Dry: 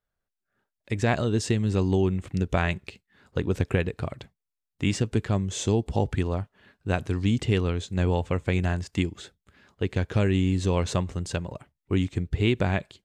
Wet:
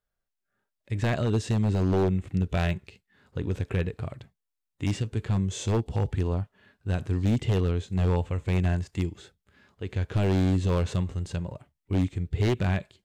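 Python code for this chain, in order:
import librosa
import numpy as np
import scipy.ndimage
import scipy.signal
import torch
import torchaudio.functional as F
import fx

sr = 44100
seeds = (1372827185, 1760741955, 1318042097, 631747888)

y = fx.hpss(x, sr, part='percussive', gain_db=-11)
y = 10.0 ** (-19.0 / 20.0) * (np.abs((y / 10.0 ** (-19.0 / 20.0) + 3.0) % 4.0 - 2.0) - 1.0)
y = y * librosa.db_to_amplitude(2.0)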